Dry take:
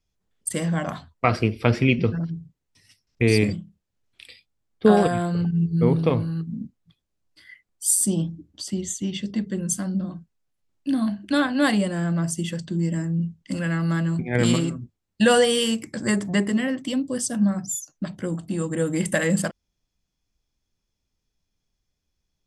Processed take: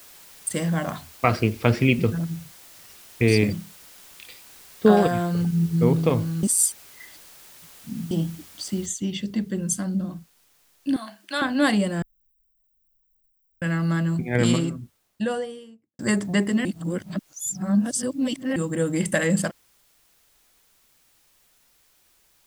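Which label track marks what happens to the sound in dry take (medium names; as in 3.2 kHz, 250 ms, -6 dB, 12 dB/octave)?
3.350000	5.820000	low-pass 7.4 kHz
6.430000	8.110000	reverse
8.860000	8.860000	noise floor step -48 dB -62 dB
10.960000	11.420000	high-pass 720 Hz
12.020000	13.620000	inverse Chebyshev band-stop 130–7900 Hz, stop band 70 dB
14.330000	15.990000	studio fade out
16.650000	18.560000	reverse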